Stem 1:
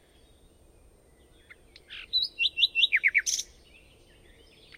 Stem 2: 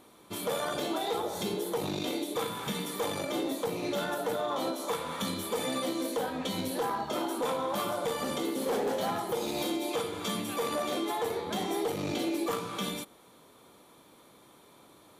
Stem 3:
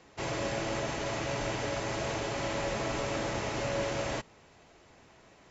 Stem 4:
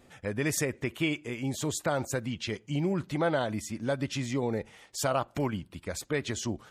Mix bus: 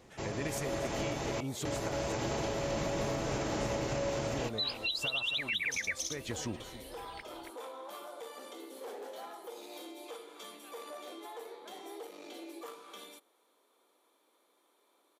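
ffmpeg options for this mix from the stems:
ffmpeg -i stem1.wav -i stem2.wav -i stem3.wav -i stem4.wav -filter_complex "[0:a]adelay=2450,volume=1.5dB,asplit=2[link_01][link_02];[link_02]volume=-5dB[link_03];[1:a]highpass=frequency=320:width=0.5412,highpass=frequency=320:width=1.3066,acontrast=38,adelay=150,volume=-19dB[link_04];[2:a]dynaudnorm=framelen=140:gausssize=13:maxgain=10dB,equalizer=frequency=2000:width_type=o:width=2.4:gain=-6,volume=-1dB,asplit=3[link_05][link_06][link_07];[link_05]atrim=end=1.13,asetpts=PTS-STARTPTS,afade=type=out:start_time=1.126:duration=0.004:curve=hsin[link_08];[link_06]atrim=start=1.13:end=1.65,asetpts=PTS-STARTPTS,volume=0[link_09];[link_07]atrim=start=1.65,asetpts=PTS-STARTPTS,afade=type=in:duration=0.004:curve=hsin[link_10];[link_08][link_09][link_10]concat=n=3:v=0:a=1,asplit=2[link_11][link_12];[link_12]volume=-4dB[link_13];[3:a]volume=-3.5dB,asplit=2[link_14][link_15];[link_15]volume=-17dB[link_16];[link_01][link_11][link_14]amix=inputs=3:normalize=0,acompressor=threshold=-35dB:ratio=2,volume=0dB[link_17];[link_03][link_13][link_16]amix=inputs=3:normalize=0,aecho=0:1:276:1[link_18];[link_04][link_17][link_18]amix=inputs=3:normalize=0,alimiter=level_in=1dB:limit=-24dB:level=0:latency=1:release=180,volume=-1dB" out.wav

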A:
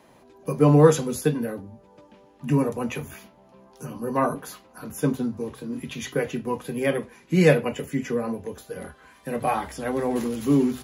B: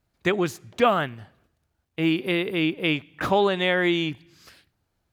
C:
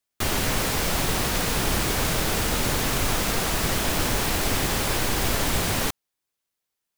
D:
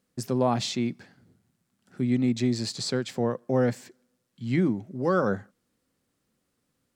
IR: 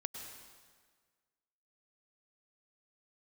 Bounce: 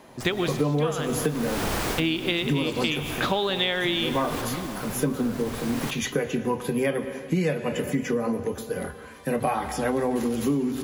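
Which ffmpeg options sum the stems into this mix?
-filter_complex "[0:a]volume=2.5dB,asplit=2[link_01][link_02];[link_02]volume=-5.5dB[link_03];[1:a]equalizer=frequency=3700:width=1.8:gain=10.5,tremolo=f=0.54:d=0.3,volume=0dB,asplit=2[link_04][link_05];[link_05]volume=-3dB[link_06];[2:a]equalizer=frequency=730:width=0.38:gain=6,volume=-6dB,asplit=2[link_07][link_08];[link_08]volume=-13.5dB[link_09];[3:a]acompressor=threshold=-32dB:ratio=6,volume=0dB,asplit=2[link_10][link_11];[link_11]apad=whole_len=307473[link_12];[link_07][link_12]sidechaincompress=threshold=-51dB:ratio=8:attack=16:release=584[link_13];[4:a]atrim=start_sample=2205[link_14];[link_03][link_06][link_09]amix=inputs=3:normalize=0[link_15];[link_15][link_14]afir=irnorm=-1:irlink=0[link_16];[link_01][link_04][link_13][link_10][link_16]amix=inputs=5:normalize=0,acompressor=threshold=-21dB:ratio=10"

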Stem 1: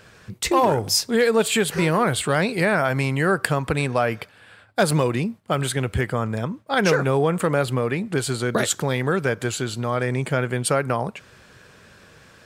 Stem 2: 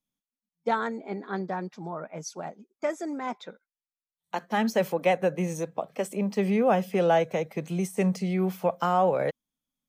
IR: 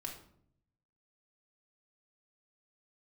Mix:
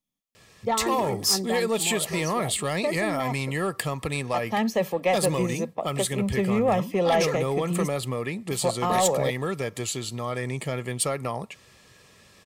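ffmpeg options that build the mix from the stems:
-filter_complex "[0:a]highshelf=frequency=3000:gain=8,adelay=350,volume=-6.5dB[link_01];[1:a]volume=1.5dB,asplit=3[link_02][link_03][link_04];[link_02]atrim=end=7.88,asetpts=PTS-STARTPTS,afade=type=out:start_time=7.876:duration=0.004:curve=hsin[link_05];[link_03]atrim=start=7.88:end=8.51,asetpts=PTS-STARTPTS,volume=0[link_06];[link_04]atrim=start=8.51,asetpts=PTS-STARTPTS,afade=type=in:duration=0.004:curve=hsin[link_07];[link_05][link_06][link_07]concat=n=3:v=0:a=1[link_08];[link_01][link_08]amix=inputs=2:normalize=0,asoftclip=type=tanh:threshold=-13.5dB,asuperstop=centerf=1500:order=8:qfactor=5.7"

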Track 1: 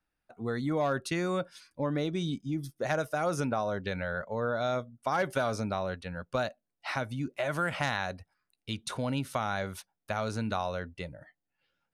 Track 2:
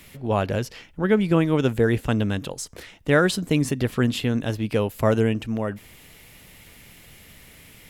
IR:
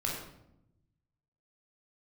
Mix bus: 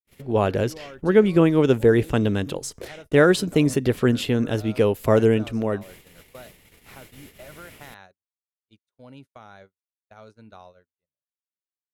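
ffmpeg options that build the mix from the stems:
-filter_complex "[0:a]volume=-14.5dB[link_01];[1:a]adelay=50,volume=0dB[link_02];[link_01][link_02]amix=inputs=2:normalize=0,agate=range=-43dB:threshold=-46dB:ratio=16:detection=peak,equalizer=frequency=400:width_type=o:width=0.78:gain=6"

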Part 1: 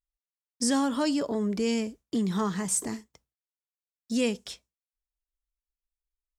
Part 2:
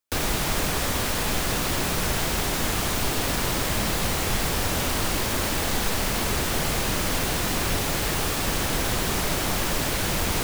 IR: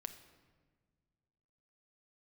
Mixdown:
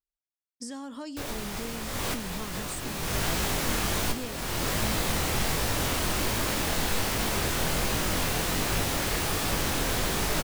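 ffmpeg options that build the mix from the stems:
-filter_complex "[0:a]acompressor=threshold=-27dB:ratio=6,volume=-8.5dB,asplit=2[link_01][link_02];[1:a]flanger=delay=18:depth=7.5:speed=1.3,adelay=1050,volume=0.5dB[link_03];[link_02]apad=whole_len=506269[link_04];[link_03][link_04]sidechaincompress=threshold=-45dB:ratio=8:attack=49:release=502[link_05];[link_01][link_05]amix=inputs=2:normalize=0"

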